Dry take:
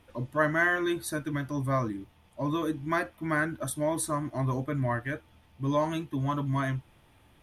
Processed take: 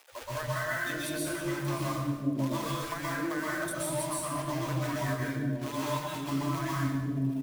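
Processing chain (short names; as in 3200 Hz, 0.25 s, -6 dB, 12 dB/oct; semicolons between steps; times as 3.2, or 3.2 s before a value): companded quantiser 4-bit; reverb removal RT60 1.2 s; three bands offset in time highs, lows, mids 0.12/0.54 s, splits 150/460 Hz; compressor, threshold -36 dBFS, peak gain reduction 15 dB; plate-style reverb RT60 1.1 s, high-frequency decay 0.9×, pre-delay 0.11 s, DRR -6 dB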